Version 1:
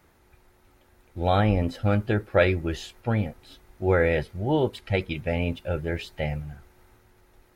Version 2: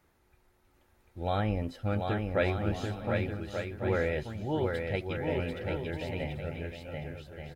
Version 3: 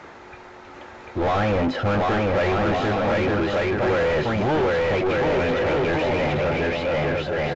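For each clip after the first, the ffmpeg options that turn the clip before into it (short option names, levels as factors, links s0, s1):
-af "aecho=1:1:740|1184|1450|1610|1706:0.631|0.398|0.251|0.158|0.1,volume=0.376"
-filter_complex "[0:a]asplit=2[s0][s1];[s1]highpass=f=720:p=1,volume=89.1,asoftclip=type=tanh:threshold=0.188[s2];[s0][s2]amix=inputs=2:normalize=0,lowpass=f=1300:p=1,volume=0.501,acrossover=split=3700[s3][s4];[s4]acompressor=threshold=0.00562:ratio=4:attack=1:release=60[s5];[s3][s5]amix=inputs=2:normalize=0,aresample=16000,aresample=44100,volume=1.19"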